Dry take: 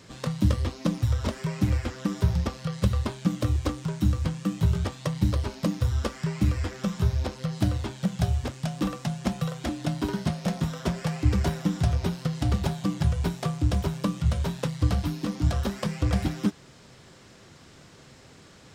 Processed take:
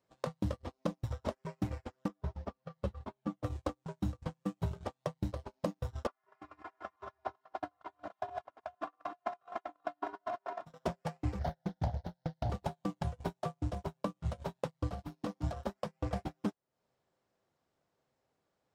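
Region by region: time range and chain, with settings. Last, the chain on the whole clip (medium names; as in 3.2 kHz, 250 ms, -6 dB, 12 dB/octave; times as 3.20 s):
2.08–3.44 s: low-pass 2.7 kHz 6 dB/octave + three-phase chorus
6.07–10.66 s: chunks repeated in reverse 223 ms, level -1.5 dB + band-pass filter 1.2 kHz, Q 1.5 + comb 2.9 ms, depth 97%
11.39–12.50 s: bass shelf 240 Hz +5 dB + static phaser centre 1.7 kHz, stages 8 + loudspeaker Doppler distortion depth 0.59 ms
whole clip: peaking EQ 700 Hz +12.5 dB 1.8 oct; compression 4:1, threshold -37 dBFS; gate -35 dBFS, range -39 dB; trim +3.5 dB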